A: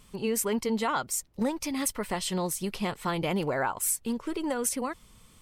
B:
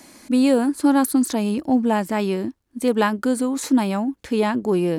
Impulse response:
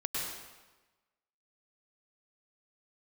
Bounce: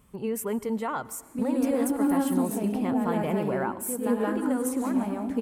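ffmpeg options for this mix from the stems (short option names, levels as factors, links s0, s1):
-filter_complex "[0:a]highpass=43,volume=0.891,asplit=3[s0][s1][s2];[s1]volume=0.0841[s3];[1:a]adelay=1050,volume=0.562,asplit=3[s4][s5][s6];[s5]volume=0.282[s7];[s6]volume=0.531[s8];[s2]apad=whole_len=266314[s9];[s4][s9]sidechaincompress=threshold=0.00316:ratio=8:attack=16:release=370[s10];[2:a]atrim=start_sample=2205[s11];[s3][s7]amix=inputs=2:normalize=0[s12];[s12][s11]afir=irnorm=-1:irlink=0[s13];[s8]aecho=0:1:175|350|525|700:1|0.27|0.0729|0.0197[s14];[s0][s10][s13][s14]amix=inputs=4:normalize=0,equalizer=f=4500:w=0.69:g=-14.5"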